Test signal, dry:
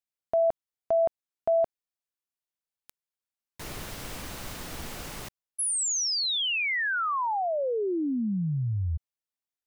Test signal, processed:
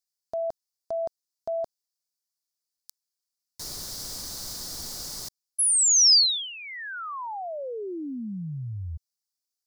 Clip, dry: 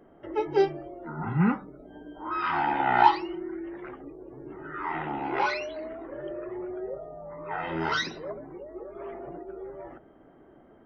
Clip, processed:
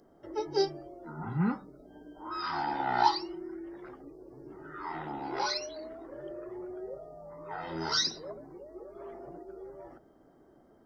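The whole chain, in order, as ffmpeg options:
-af "highshelf=f=3.6k:t=q:w=3:g=10.5,volume=-5.5dB"

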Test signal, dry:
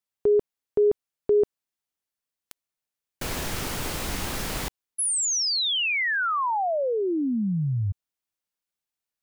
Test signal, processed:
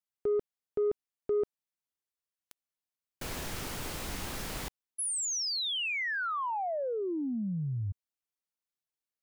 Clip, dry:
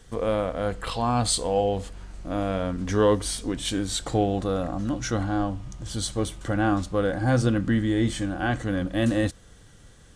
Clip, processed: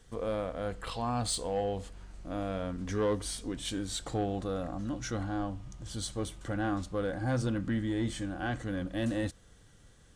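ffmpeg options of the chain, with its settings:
-af "asoftclip=type=tanh:threshold=-14.5dB,volume=-7.5dB"

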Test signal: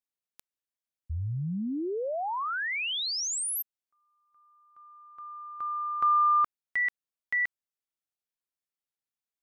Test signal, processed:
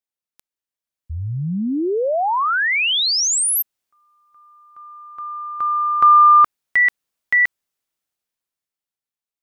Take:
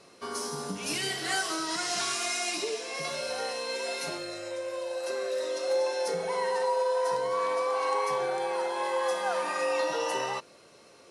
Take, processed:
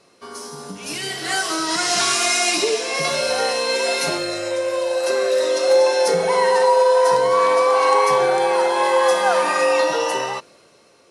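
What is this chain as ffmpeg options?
-af "dynaudnorm=f=270:g=11:m=13dB"

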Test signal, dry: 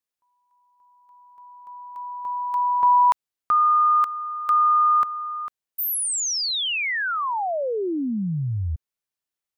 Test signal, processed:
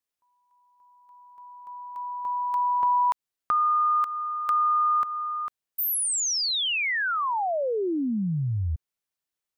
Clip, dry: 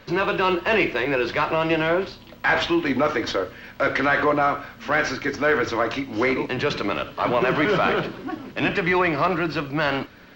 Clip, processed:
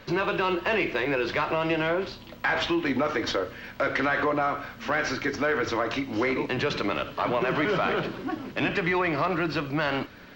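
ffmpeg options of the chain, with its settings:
-af "acompressor=threshold=-22dB:ratio=3:attack=6.5:release=319:knee=6:detection=peak"

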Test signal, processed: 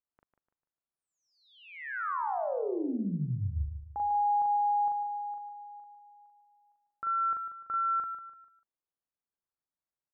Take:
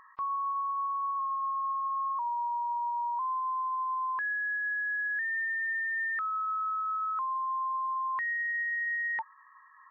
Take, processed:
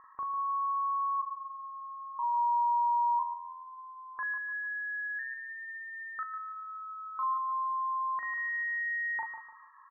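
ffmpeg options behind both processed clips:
-filter_complex "[0:a]lowpass=f=1.5k:w=0.5412,lowpass=f=1.5k:w=1.3066,alimiter=level_in=7dB:limit=-24dB:level=0:latency=1,volume=-7dB,asplit=2[a][b];[b]adelay=40,volume=-3dB[c];[a][c]amix=inputs=2:normalize=0,asplit=2[d][e];[e]aecho=0:1:148|296|444|592:0.355|0.128|0.046|0.0166[f];[d][f]amix=inputs=2:normalize=0"

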